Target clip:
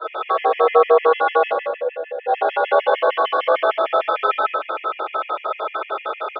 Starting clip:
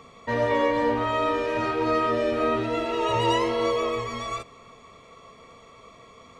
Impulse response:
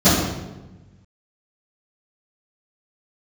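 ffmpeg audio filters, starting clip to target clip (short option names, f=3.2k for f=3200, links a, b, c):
-filter_complex "[0:a]acompressor=threshold=-38dB:ratio=2.5,asplit=2[a][b];[b]highpass=f=720:p=1,volume=21dB,asoftclip=type=tanh:threshold=-24.5dB[c];[a][c]amix=inputs=2:normalize=0,lowpass=f=1.3k:p=1,volume=-6dB,highpass=f=180:t=q:w=0.5412,highpass=f=180:t=q:w=1.307,lowpass=f=3.3k:t=q:w=0.5176,lowpass=f=3.3k:t=q:w=0.7071,lowpass=f=3.3k:t=q:w=1.932,afreqshift=180,asettb=1/sr,asplit=3[d][e][f];[d]atrim=end=1.494[g];[e]atrim=start=1.49:end=2.27,asetpts=PTS-STARTPTS,afade=t=in:d=0.004:c=qsin,afade=t=out:st=0.776:d=0.004:c=qsin,asplit=3[h][i][j];[h]bandpass=f=530:t=q:w=8,volume=0dB[k];[i]bandpass=f=1.84k:t=q:w=8,volume=-6dB[l];[j]bandpass=f=2.48k:t=q:w=8,volume=-9dB[m];[k][l][m]amix=inputs=3:normalize=0[n];[f]atrim=start=2.266[o];[g][n]acrossfade=d=0.004:c1=hsin:c2=qsin[p];[p][o]acrossfade=d=0.004:c1=qsin:c2=hsin,aecho=1:1:90.38|177.8:0.282|0.282[q];[1:a]atrim=start_sample=2205,asetrate=33957,aresample=44100[r];[q][r]afir=irnorm=-1:irlink=0,afftfilt=real='re*gt(sin(2*PI*6.6*pts/sr)*(1-2*mod(floor(b*sr/1024/1700),2)),0)':imag='im*gt(sin(2*PI*6.6*pts/sr)*(1-2*mod(floor(b*sr/1024/1700),2)),0)':win_size=1024:overlap=0.75,volume=-9dB"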